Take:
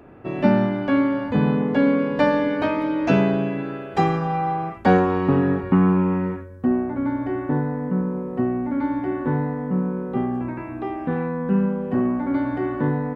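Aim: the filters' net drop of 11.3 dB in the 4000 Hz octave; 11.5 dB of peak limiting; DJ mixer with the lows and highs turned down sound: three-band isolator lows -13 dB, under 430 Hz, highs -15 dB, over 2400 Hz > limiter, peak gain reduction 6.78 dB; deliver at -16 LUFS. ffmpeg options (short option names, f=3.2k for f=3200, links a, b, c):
-filter_complex "[0:a]equalizer=f=4k:t=o:g=-4.5,alimiter=limit=-17dB:level=0:latency=1,acrossover=split=430 2400:gain=0.224 1 0.178[a][b][c];[a][b][c]amix=inputs=3:normalize=0,volume=18dB,alimiter=limit=-7dB:level=0:latency=1"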